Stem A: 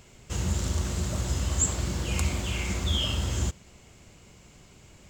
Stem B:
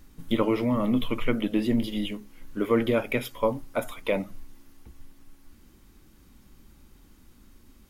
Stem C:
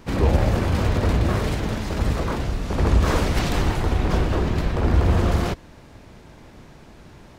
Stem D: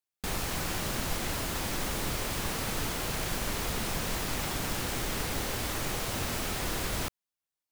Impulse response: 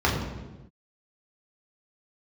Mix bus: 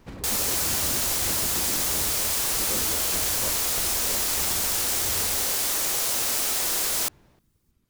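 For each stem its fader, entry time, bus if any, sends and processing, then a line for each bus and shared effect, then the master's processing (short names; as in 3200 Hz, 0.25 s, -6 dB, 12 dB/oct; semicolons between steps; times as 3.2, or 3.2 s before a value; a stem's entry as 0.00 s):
-16.5 dB, 0.05 s, no send, dry
-15.5 dB, 0.00 s, no send, whisperiser
-8.5 dB, 0.00 s, no send, compressor, threshold -27 dBFS, peak gain reduction 14 dB; tremolo saw down 1.6 Hz, depth 65%
+2.0 dB, 0.00 s, no send, tone controls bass -15 dB, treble +12 dB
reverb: off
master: dry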